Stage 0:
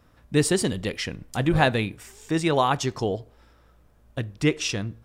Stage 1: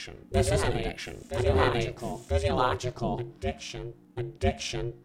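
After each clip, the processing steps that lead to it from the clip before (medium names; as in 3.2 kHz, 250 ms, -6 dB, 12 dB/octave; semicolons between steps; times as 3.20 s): reverse echo 995 ms -5 dB; harmonic-percussive split percussive -8 dB; ring modulator 240 Hz; trim +1.5 dB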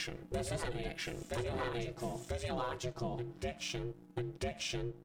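comb 6.1 ms, depth 58%; waveshaping leveller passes 1; compression 6:1, threshold -32 dBFS, peak gain reduction 14.5 dB; trim -3 dB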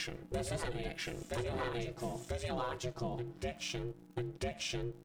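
crackle 71 per s -54 dBFS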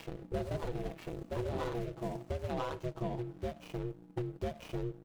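median filter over 25 samples; trim +2 dB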